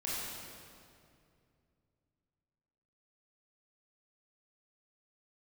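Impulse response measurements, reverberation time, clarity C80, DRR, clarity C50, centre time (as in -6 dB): 2.4 s, -1.5 dB, -8.0 dB, -3.5 dB, 0.151 s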